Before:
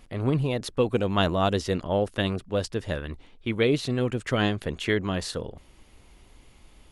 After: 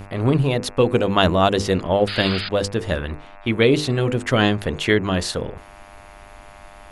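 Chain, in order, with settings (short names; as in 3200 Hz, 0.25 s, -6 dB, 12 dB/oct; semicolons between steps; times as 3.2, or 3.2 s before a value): buzz 100 Hz, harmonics 27, -40 dBFS -7 dB/oct; notches 50/100/150/200/250/300/350/400/450/500 Hz; painted sound noise, 2.07–2.49, 1200–5000 Hz -36 dBFS; gain +7.5 dB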